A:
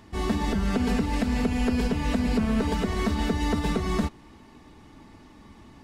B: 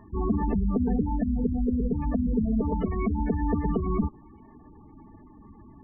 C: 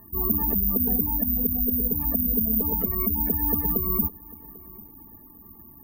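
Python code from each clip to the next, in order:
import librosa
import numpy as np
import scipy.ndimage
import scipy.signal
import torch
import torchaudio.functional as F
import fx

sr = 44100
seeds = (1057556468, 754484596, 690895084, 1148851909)

y1 = scipy.signal.sosfilt(scipy.signal.butter(2, 3700.0, 'lowpass', fs=sr, output='sos'), x)
y1 = fx.spec_gate(y1, sr, threshold_db=-15, keep='strong')
y1 = fx.rider(y1, sr, range_db=10, speed_s=2.0)
y2 = fx.echo_feedback(y1, sr, ms=796, feedback_pct=27, wet_db=-22.0)
y2 = (np.kron(scipy.signal.resample_poly(y2, 1, 3), np.eye(3)[0]) * 3)[:len(y2)]
y2 = y2 * 10.0 ** (-3.5 / 20.0)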